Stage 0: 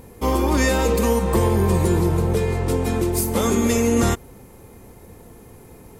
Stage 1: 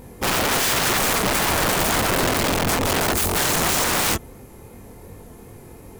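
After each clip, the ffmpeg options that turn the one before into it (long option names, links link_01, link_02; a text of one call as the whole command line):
ffmpeg -i in.wav -af "flanger=delay=20:depth=6.4:speed=2.7,aeval=exprs='(mod(10.6*val(0)+1,2)-1)/10.6':channel_layout=same,volume=5dB" out.wav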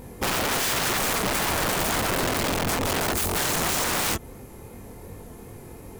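ffmpeg -i in.wav -af "acompressor=threshold=-24dB:ratio=3" out.wav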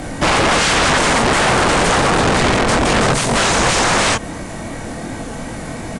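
ffmpeg -i in.wav -filter_complex "[0:a]asplit=2[link_01][link_02];[link_02]highpass=frequency=720:poles=1,volume=21dB,asoftclip=type=tanh:threshold=-16.5dB[link_03];[link_01][link_03]amix=inputs=2:normalize=0,lowpass=frequency=4700:poles=1,volume=-6dB,aresample=22050,aresample=44100,afreqshift=-210,volume=8.5dB" out.wav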